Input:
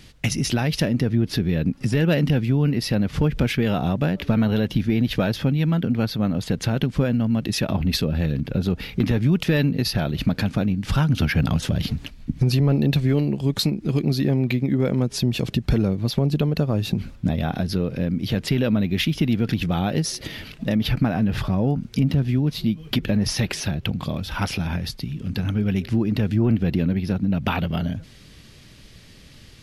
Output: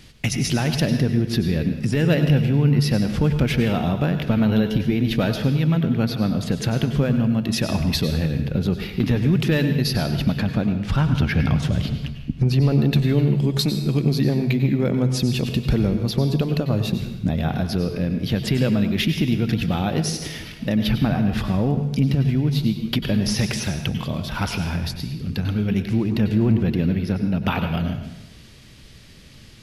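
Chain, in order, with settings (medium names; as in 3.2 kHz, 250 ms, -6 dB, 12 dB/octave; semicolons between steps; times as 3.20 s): 10.35–12.62 s: treble shelf 5.3 kHz -9.5 dB; reverberation RT60 0.95 s, pre-delay 91 ms, DRR 7 dB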